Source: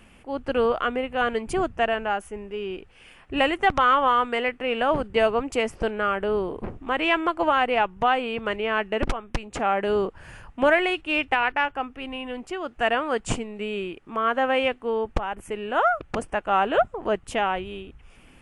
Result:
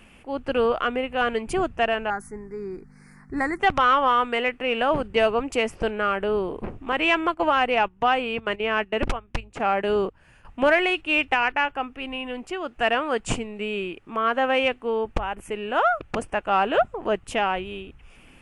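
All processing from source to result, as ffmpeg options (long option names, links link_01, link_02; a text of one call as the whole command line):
ffmpeg -i in.wav -filter_complex "[0:a]asettb=1/sr,asplit=3[link_01][link_02][link_03];[link_01]atrim=end=2.104[link_04];[link_02]atrim=start=2.1:end=3.6,asetpts=PTS-STARTPTS,afade=type=in:duration=0.004:curve=qsin,afade=type=out:start_time=1.496:duration=0.004:curve=qsin,equalizer=frequency=590:width=2.6:gain=-13,aeval=exprs='val(0)+0.00708*(sin(2*PI*50*n/s)+sin(2*PI*2*50*n/s)/2+sin(2*PI*3*50*n/s)/3+sin(2*PI*4*50*n/s)/4+sin(2*PI*5*50*n/s)/5)':channel_layout=same,asuperstop=centerf=3000:order=8:qfactor=1.3[link_05];[link_03]atrim=start=3.596[link_06];[link_04][link_05]acrossfade=duration=0.004:curve1=hsin:curve2=qsin[link_07];[link_07][link_06]acrossfade=duration=0.004:curve1=qsin:curve2=hsin,asettb=1/sr,asplit=3[link_08][link_09][link_10];[link_08]atrim=end=6.924[link_11];[link_09]atrim=start=6.92:end=10.45,asetpts=PTS-STARTPTS,afade=type=in:duration=0.004:curve=qsin,afade=type=out:start_time=3.526:duration=0.004:curve=qsin,aeval=exprs='val(0)+0.00224*(sin(2*PI*60*n/s)+sin(2*PI*2*60*n/s)/2+sin(2*PI*3*60*n/s)/3+sin(2*PI*4*60*n/s)/4+sin(2*PI*5*60*n/s)/5)':channel_layout=same,agate=range=-12dB:threshold=-31dB:ratio=16:release=100:detection=peak[link_12];[link_10]atrim=start=10.446[link_13];[link_11][link_12]acrossfade=duration=0.004:curve1=hsin:curve2=qsin[link_14];[link_14][link_13]acrossfade=duration=0.004:curve1=qsin:curve2=hsin,equalizer=frequency=2600:width_type=o:width=0.39:gain=3.5,bandreject=frequency=50:width_type=h:width=6,bandreject=frequency=100:width_type=h:width=6,acontrast=41,volume=-5dB" out.wav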